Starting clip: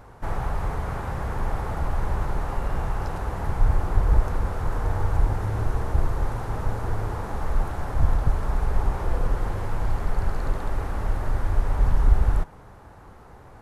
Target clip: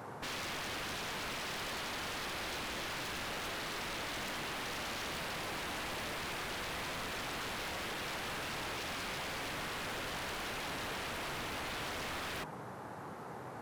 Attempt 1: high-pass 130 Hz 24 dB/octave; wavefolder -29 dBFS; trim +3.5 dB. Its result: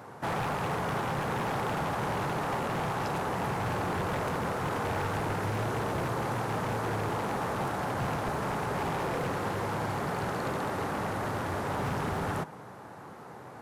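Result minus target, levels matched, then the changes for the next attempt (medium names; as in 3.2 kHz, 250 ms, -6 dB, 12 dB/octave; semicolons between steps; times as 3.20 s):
wavefolder: distortion -31 dB
change: wavefolder -39 dBFS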